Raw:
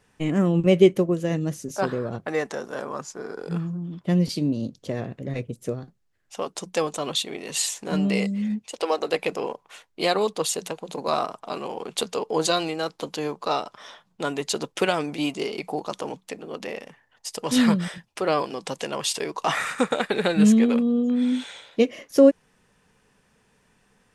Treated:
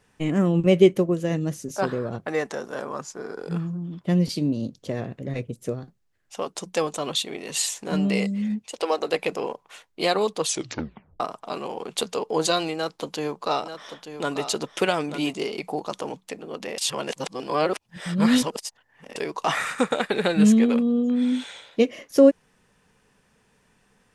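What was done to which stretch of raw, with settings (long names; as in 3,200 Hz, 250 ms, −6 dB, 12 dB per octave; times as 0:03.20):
0:10.44: tape stop 0.76 s
0:12.74–0:15.33: single-tap delay 890 ms −10 dB
0:16.78–0:19.16: reverse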